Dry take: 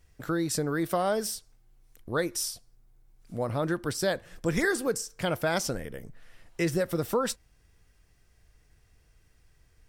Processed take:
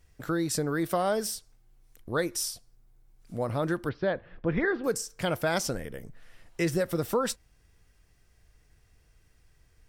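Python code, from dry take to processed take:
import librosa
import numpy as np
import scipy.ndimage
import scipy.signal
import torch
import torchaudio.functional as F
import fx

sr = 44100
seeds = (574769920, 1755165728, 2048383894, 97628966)

y = fx.bessel_lowpass(x, sr, hz=2100.0, order=8, at=(3.89, 4.84))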